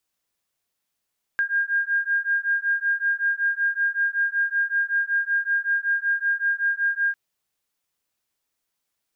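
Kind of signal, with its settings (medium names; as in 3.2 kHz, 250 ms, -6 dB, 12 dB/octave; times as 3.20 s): beating tones 1.61 kHz, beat 5.3 Hz, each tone -23.5 dBFS 5.75 s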